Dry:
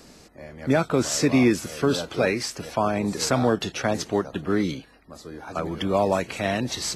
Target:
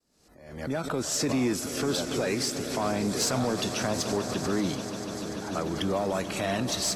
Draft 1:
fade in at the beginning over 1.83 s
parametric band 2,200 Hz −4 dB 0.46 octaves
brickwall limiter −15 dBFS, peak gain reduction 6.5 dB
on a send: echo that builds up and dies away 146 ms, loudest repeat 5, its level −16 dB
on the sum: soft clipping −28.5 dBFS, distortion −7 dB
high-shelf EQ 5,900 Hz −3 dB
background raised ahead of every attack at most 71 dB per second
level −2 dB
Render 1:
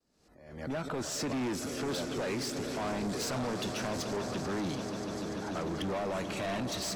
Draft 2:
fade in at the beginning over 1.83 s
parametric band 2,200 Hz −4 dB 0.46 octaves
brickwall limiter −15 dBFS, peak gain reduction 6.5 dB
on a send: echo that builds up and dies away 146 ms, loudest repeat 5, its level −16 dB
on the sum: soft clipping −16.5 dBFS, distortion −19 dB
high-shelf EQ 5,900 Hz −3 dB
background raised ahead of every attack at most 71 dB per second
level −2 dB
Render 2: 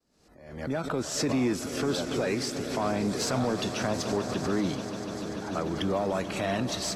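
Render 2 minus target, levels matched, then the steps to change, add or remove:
8,000 Hz band −4.0 dB
change: high-shelf EQ 5,900 Hz +6 dB

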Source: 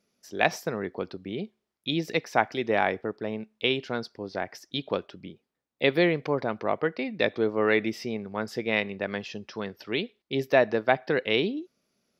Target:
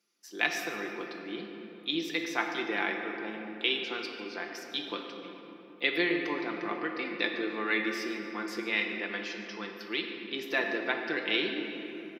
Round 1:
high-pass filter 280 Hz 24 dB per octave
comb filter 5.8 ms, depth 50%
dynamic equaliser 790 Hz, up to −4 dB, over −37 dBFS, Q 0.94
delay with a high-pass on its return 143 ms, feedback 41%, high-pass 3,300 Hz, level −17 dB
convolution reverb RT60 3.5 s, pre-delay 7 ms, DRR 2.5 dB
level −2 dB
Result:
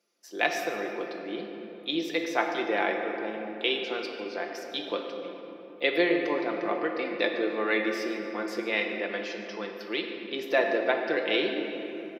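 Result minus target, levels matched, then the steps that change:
500 Hz band +5.0 dB
add after high-pass filter: parametric band 580 Hz −13 dB 0.92 octaves

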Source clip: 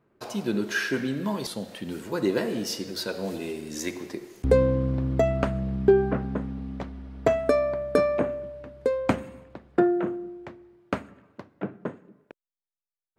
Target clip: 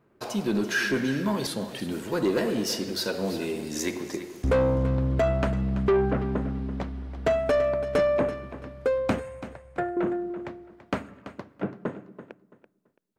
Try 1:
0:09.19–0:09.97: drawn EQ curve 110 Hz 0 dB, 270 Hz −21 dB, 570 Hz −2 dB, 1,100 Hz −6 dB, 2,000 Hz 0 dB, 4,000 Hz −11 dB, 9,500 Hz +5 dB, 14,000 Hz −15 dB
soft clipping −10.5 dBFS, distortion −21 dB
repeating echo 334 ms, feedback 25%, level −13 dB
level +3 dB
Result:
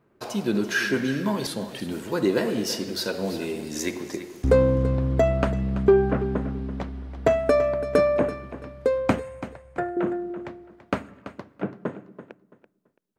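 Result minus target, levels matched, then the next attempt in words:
soft clipping: distortion −11 dB
0:09.19–0:09.97: drawn EQ curve 110 Hz 0 dB, 270 Hz −21 dB, 570 Hz −2 dB, 1,100 Hz −6 dB, 2,000 Hz 0 dB, 4,000 Hz −11 dB, 9,500 Hz +5 dB, 14,000 Hz −15 dB
soft clipping −20.5 dBFS, distortion −10 dB
repeating echo 334 ms, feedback 25%, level −13 dB
level +3 dB

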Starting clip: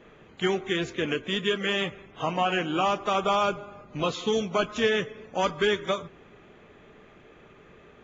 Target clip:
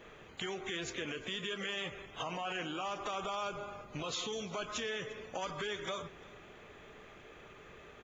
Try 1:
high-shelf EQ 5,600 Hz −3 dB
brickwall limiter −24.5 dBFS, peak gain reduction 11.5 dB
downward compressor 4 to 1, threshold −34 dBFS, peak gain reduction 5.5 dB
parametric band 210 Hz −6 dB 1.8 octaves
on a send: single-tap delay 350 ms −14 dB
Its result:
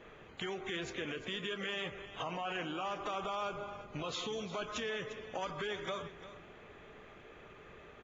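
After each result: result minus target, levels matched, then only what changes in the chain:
echo-to-direct +8.5 dB; 8,000 Hz band −5.5 dB
change: single-tap delay 350 ms −22.5 dB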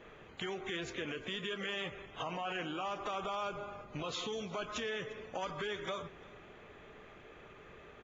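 8,000 Hz band −5.5 dB
change: high-shelf EQ 5,600 Hz +8.5 dB

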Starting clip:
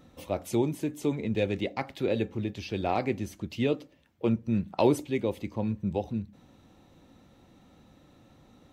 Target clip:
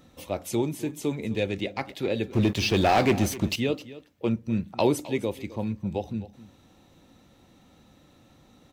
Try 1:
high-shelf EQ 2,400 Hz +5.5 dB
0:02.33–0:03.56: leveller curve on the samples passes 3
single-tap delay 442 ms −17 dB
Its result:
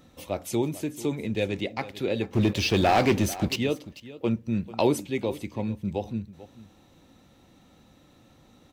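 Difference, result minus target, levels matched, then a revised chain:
echo 182 ms late
high-shelf EQ 2,400 Hz +5.5 dB
0:02.33–0:03.56: leveller curve on the samples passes 3
single-tap delay 260 ms −17 dB

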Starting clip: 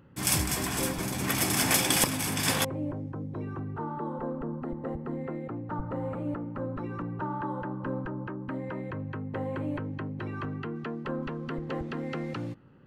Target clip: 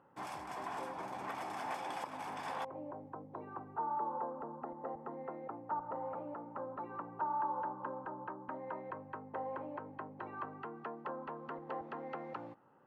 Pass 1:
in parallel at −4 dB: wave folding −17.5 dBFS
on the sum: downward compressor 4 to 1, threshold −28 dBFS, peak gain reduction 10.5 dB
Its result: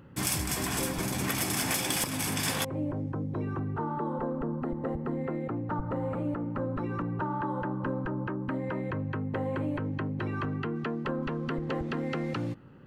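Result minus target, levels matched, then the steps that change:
1,000 Hz band −9.0 dB
add after downward compressor: resonant band-pass 850 Hz, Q 2.5

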